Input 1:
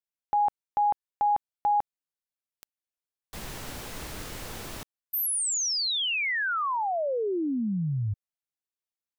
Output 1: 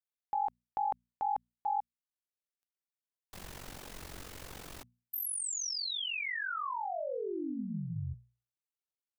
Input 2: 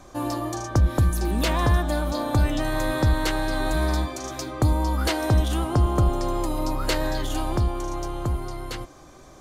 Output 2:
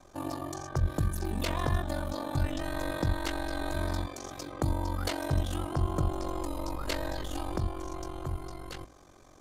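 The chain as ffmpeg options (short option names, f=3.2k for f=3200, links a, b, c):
-af "aeval=exprs='val(0)*sin(2*PI*23*n/s)':c=same,bandreject=f=60:t=h:w=6,bandreject=f=120:t=h:w=6,bandreject=f=180:t=h:w=6,bandreject=f=240:t=h:w=6,volume=-5.5dB"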